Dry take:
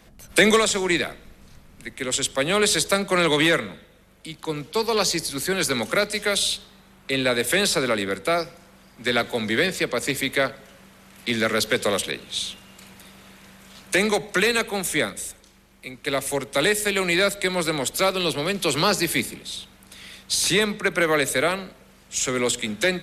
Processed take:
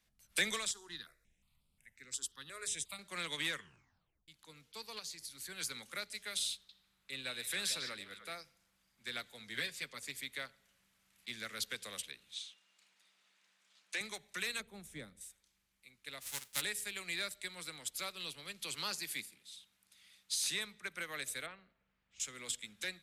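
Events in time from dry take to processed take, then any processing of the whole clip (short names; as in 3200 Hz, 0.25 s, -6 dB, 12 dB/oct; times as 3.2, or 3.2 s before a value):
0.71–2.99 step phaser 5.6 Hz 600–6200 Hz
3.52 tape stop 0.76 s
4.99–5.46 compressor, threshold -24 dBFS
6.54–8.35 delay with a stepping band-pass 0.149 s, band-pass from 3700 Hz, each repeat -1.4 oct, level -3 dB
9.54–10.01 comb 7.4 ms, depth 68%
12.34–14.01 BPF 360–7200 Hz
14.6–15.21 tilt shelf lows +9.5 dB, about 720 Hz
16.2–16.6 spectral whitening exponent 0.3
18.76–20.65 HPF 150 Hz 6 dB/oct
21.46–22.2 LPF 2100 Hz
whole clip: passive tone stack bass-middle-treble 5-5-5; upward expander 1.5:1, over -42 dBFS; gain -4.5 dB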